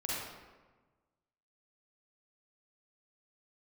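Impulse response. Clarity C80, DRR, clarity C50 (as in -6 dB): 0.0 dB, -6.5 dB, -4.0 dB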